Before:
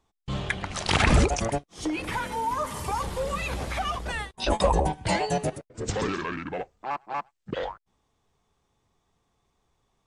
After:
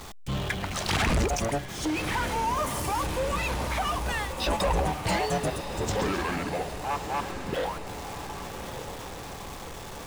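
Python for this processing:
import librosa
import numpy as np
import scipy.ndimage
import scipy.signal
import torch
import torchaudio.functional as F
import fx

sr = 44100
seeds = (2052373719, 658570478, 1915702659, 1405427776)

y = x + 0.5 * 10.0 ** (-36.0 / 20.0) * np.sign(x)
y = fx.high_shelf(y, sr, hz=11000.0, db=6.5, at=(2.56, 3.06))
y = 10.0 ** (-20.5 / 20.0) * np.tanh(y / 10.0 ** (-20.5 / 20.0))
y = fx.echo_diffused(y, sr, ms=1210, feedback_pct=56, wet_db=-9.0)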